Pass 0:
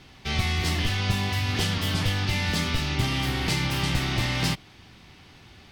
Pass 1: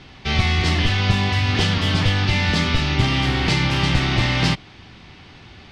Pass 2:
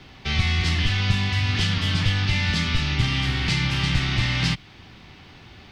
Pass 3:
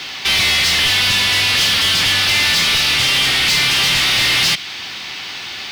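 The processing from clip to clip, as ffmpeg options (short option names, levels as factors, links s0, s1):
-af "lowpass=5000,volume=2.24"
-filter_complex "[0:a]acrossover=split=230|1200[s0][s1][s2];[s1]acompressor=threshold=0.0141:ratio=6[s3];[s0][s3][s2]amix=inputs=3:normalize=0,acrusher=bits=11:mix=0:aa=0.000001,volume=0.75"
-filter_complex "[0:a]crystalizer=i=7:c=0,asplit=2[s0][s1];[s1]highpass=f=720:p=1,volume=20,asoftclip=type=tanh:threshold=0.891[s2];[s0][s2]amix=inputs=2:normalize=0,lowpass=f=5100:p=1,volume=0.501,volume=0.501"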